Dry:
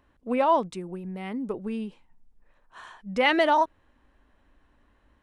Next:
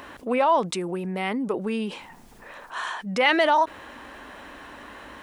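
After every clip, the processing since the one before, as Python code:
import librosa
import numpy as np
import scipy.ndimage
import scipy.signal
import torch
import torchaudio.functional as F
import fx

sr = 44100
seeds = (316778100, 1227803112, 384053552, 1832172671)

y = fx.highpass(x, sr, hz=510.0, slope=6)
y = fx.env_flatten(y, sr, amount_pct=50)
y = F.gain(torch.from_numpy(y), 2.0).numpy()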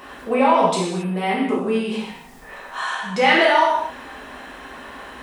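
y = fx.rev_gated(x, sr, seeds[0], gate_ms=300, shape='falling', drr_db=-7.5)
y = F.gain(torch.from_numpy(y), -2.5).numpy()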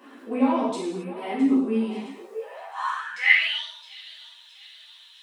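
y = fx.echo_split(x, sr, split_hz=430.0, low_ms=93, high_ms=663, feedback_pct=52, wet_db=-14.0)
y = fx.filter_sweep_highpass(y, sr, from_hz=270.0, to_hz=3600.0, start_s=2.09, end_s=3.65, q=6.9)
y = fx.ensemble(y, sr)
y = F.gain(torch.from_numpy(y), -9.0).numpy()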